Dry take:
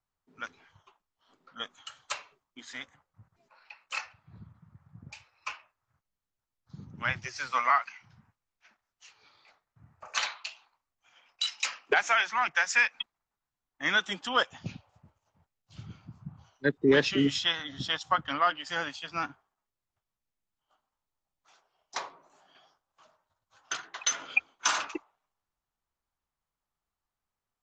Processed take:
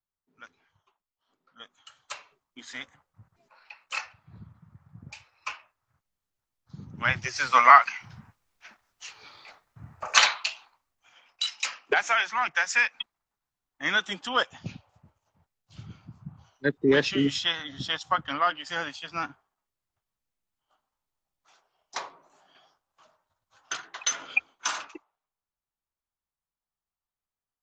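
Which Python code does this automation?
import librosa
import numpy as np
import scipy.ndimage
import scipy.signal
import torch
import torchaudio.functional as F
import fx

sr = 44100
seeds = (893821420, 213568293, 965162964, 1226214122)

y = fx.gain(x, sr, db=fx.line((1.64, -9.0), (2.64, 2.5), (6.77, 2.5), (7.89, 12.0), (10.16, 12.0), (11.5, 1.0), (24.51, 1.0), (24.91, -7.5)))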